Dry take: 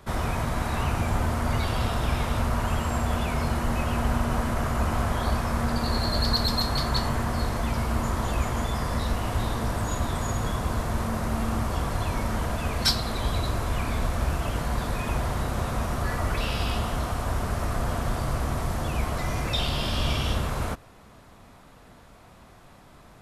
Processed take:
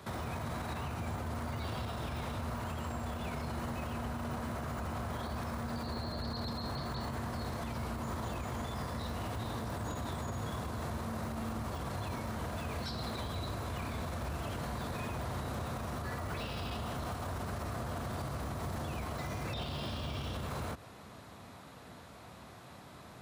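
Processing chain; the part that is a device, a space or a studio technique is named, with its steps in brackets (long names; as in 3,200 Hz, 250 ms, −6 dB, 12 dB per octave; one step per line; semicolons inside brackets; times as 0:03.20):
broadcast voice chain (high-pass filter 70 Hz 24 dB per octave; de-essing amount 100%; downward compressor, threshold −30 dBFS, peak gain reduction 8 dB; parametric band 4,000 Hz +4 dB 0.26 octaves; brickwall limiter −30 dBFS, peak gain reduction 9 dB)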